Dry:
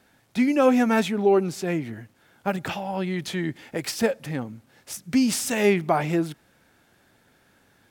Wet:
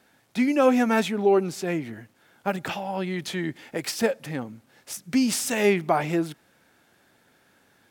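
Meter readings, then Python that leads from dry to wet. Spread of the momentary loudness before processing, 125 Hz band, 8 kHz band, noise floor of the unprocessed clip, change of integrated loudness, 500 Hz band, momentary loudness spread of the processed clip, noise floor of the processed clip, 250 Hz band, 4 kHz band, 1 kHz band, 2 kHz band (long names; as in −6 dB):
13 LU, −3.0 dB, 0.0 dB, −62 dBFS, −1.0 dB, −0.5 dB, 14 LU, −63 dBFS, −1.5 dB, 0.0 dB, 0.0 dB, 0.0 dB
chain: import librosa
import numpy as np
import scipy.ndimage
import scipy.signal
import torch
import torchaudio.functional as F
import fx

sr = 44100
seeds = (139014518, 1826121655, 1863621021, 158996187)

y = fx.low_shelf(x, sr, hz=97.0, db=-11.0)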